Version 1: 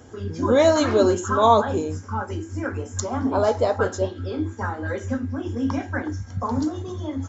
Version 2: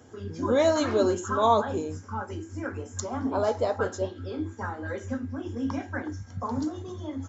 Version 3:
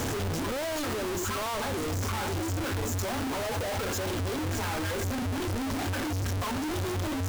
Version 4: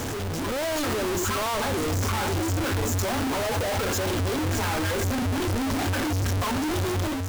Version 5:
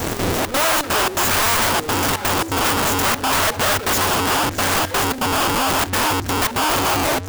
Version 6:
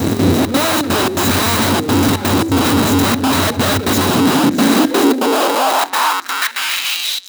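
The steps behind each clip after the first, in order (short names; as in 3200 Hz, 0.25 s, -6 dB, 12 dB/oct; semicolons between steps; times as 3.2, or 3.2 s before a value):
HPF 80 Hz; gain -5.5 dB
infinite clipping; low shelf 94 Hz +5.5 dB; gain -3 dB
AGC gain up to 5 dB
in parallel at -9 dB: sine folder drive 20 dB, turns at -21 dBFS; on the sum: step gate "xxxxx.xxx.xx.xx" 167 bpm -12 dB; wrapped overs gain 23.5 dB; gain +8 dB
high-pass sweep 91 Hz -> 3600 Hz, 3.92–7.17; small resonant body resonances 250/3900 Hz, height 13 dB, ringing for 20 ms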